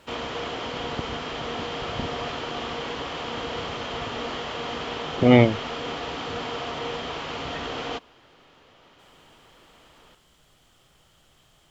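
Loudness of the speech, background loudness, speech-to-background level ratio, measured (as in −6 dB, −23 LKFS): −19.0 LKFS, −31.5 LKFS, 12.5 dB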